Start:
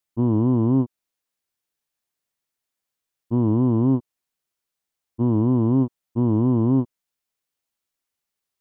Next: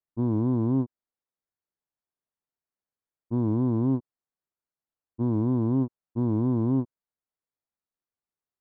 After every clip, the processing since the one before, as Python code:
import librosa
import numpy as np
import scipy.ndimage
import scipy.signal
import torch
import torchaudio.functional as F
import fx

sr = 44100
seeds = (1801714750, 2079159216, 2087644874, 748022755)

y = fx.wiener(x, sr, points=15)
y = F.gain(torch.from_numpy(y), -5.5).numpy()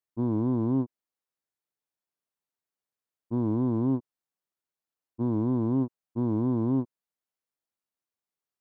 y = fx.low_shelf(x, sr, hz=92.0, db=-9.5)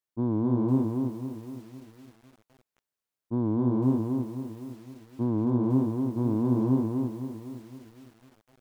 y = x + 10.0 ** (-3.5 / 20.0) * np.pad(x, (int(257 * sr / 1000.0), 0))[:len(x)]
y = fx.echo_crushed(y, sr, ms=510, feedback_pct=35, bits=8, wet_db=-11.0)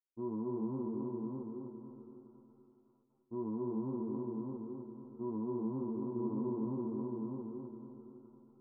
y = scipy.signal.sosfilt(scipy.signal.cheby1(6, 9, 1400.0, 'lowpass', fs=sr, output='sos'), x)
y = fx.stiff_resonator(y, sr, f0_hz=72.0, decay_s=0.21, stiffness=0.002)
y = fx.echo_feedback(y, sr, ms=605, feedback_pct=20, wet_db=-3.5)
y = F.gain(torch.from_numpy(y), -1.0).numpy()